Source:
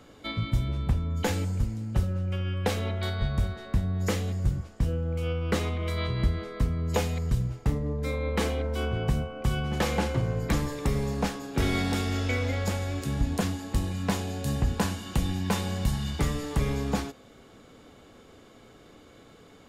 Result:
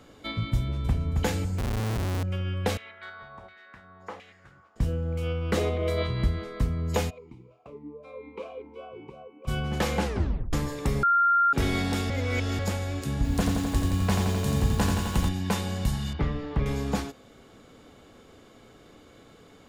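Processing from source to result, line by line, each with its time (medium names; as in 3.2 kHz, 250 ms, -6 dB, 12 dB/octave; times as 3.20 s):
0.57–1.08 s: echo throw 270 ms, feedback 35%, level -4.5 dB
1.58–2.23 s: Schmitt trigger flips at -32 dBFS
2.77–4.76 s: LFO band-pass saw down 1.4 Hz 840–2300 Hz
5.57–6.03 s: high-order bell 500 Hz +9 dB 1.2 oct
7.09–9.47 s: talking filter a-u 1.7 Hz -> 3.4 Hz
10.04 s: tape stop 0.49 s
11.03–11.53 s: bleep 1.39 kHz -18 dBFS
12.10–12.59 s: reverse
13.16–15.29 s: bit-crushed delay 86 ms, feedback 80%, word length 8-bit, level -4.5 dB
16.13–16.66 s: distance through air 290 m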